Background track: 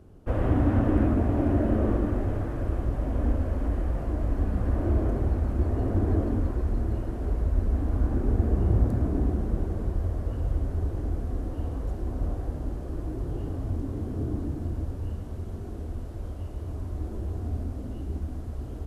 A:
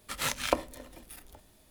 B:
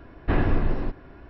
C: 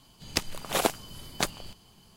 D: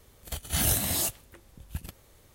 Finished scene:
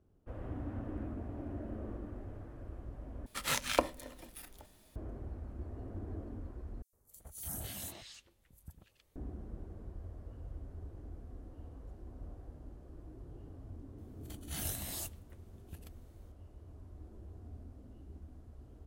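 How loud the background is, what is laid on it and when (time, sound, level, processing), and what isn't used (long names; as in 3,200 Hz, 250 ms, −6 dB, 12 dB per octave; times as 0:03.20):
background track −18.5 dB
0:03.26: overwrite with A −2 dB
0:06.82: overwrite with D −15.5 dB + three-band delay without the direct sound highs, lows, mids 110/290 ms, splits 1,500/5,900 Hz
0:13.98: mix in D −17 dB + automatic gain control gain up to 3.5 dB
not used: B, C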